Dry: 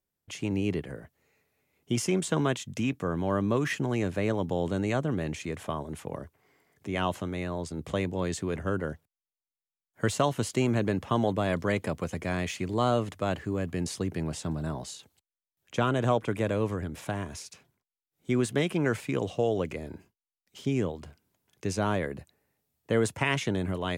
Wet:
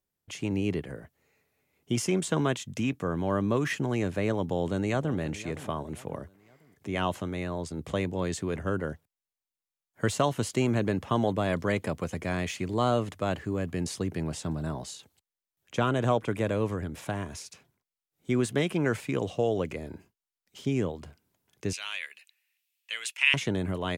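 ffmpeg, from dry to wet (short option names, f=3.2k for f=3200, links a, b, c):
-filter_complex "[0:a]asplit=2[a][b];[b]afade=t=in:st=4.4:d=0.01,afade=t=out:st=5.18:d=0.01,aecho=0:1:520|1040|1560:0.149624|0.0598494|0.0239398[c];[a][c]amix=inputs=2:normalize=0,asettb=1/sr,asplit=3[d][e][f];[d]atrim=end=21.734[g];[e]atrim=start=21.73:end=23.34,asetpts=PTS-STARTPTS,afade=t=in:d=0.004:c=qsin,afade=t=out:st=1.606:d=0.004:c=qsin,highpass=f=2.6k:t=q:w=3.8[h];[f]atrim=start=23.336[i];[g][h]acrossfade=d=0.004:c1=hsin:c2=qsin[j];[j][i]acrossfade=d=0.004:c1=qsin:c2=hsin"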